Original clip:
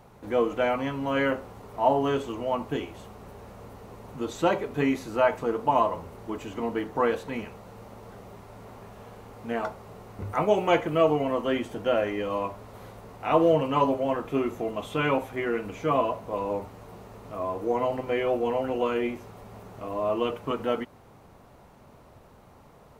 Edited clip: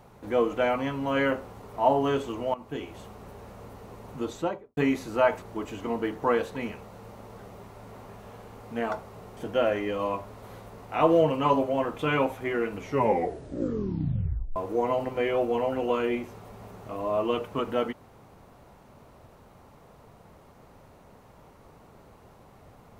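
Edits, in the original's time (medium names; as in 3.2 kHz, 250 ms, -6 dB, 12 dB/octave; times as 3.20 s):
2.54–2.97 s: fade in linear, from -16 dB
4.19–4.77 s: studio fade out
5.42–6.15 s: delete
10.10–11.68 s: delete
14.30–14.91 s: delete
15.69 s: tape stop 1.79 s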